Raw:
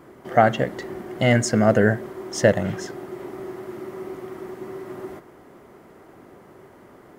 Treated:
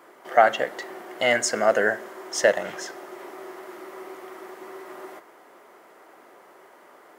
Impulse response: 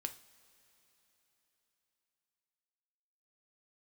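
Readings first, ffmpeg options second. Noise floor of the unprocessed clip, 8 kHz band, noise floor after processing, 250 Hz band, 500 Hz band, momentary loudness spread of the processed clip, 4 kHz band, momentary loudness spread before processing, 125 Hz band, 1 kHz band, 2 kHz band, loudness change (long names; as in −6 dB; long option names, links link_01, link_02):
−49 dBFS, +2.0 dB, −52 dBFS, −13.0 dB, −2.0 dB, 20 LU, +2.0 dB, 17 LU, −24.0 dB, 0.0 dB, +1.5 dB, −1.5 dB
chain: -filter_complex "[0:a]highpass=590,asplit=2[link_01][link_02];[1:a]atrim=start_sample=2205[link_03];[link_02][link_03]afir=irnorm=-1:irlink=0,volume=-3dB[link_04];[link_01][link_04]amix=inputs=2:normalize=0,volume=-2dB"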